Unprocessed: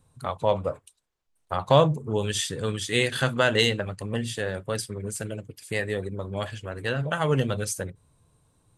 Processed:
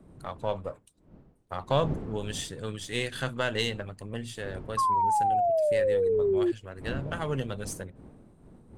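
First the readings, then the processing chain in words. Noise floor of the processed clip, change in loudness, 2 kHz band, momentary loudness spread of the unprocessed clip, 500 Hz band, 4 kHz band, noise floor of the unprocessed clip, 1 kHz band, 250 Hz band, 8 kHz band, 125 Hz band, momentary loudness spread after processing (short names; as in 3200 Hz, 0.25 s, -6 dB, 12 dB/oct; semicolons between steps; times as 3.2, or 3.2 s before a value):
-60 dBFS, -2.5 dB, -7.5 dB, 13 LU, -1.5 dB, -7.5 dB, -71 dBFS, +3.0 dB, -4.0 dB, -8.0 dB, -7.0 dB, 14 LU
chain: half-wave gain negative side -3 dB; wind noise 260 Hz -38 dBFS; painted sound fall, 4.77–6.52, 340–1100 Hz -18 dBFS; gain -6.5 dB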